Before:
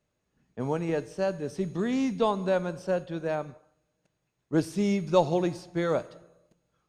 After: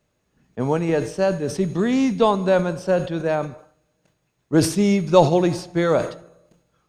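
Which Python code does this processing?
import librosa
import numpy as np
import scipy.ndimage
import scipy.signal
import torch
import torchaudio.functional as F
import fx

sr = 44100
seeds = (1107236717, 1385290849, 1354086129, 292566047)

y = fx.sustainer(x, sr, db_per_s=120.0)
y = y * 10.0 ** (8.0 / 20.0)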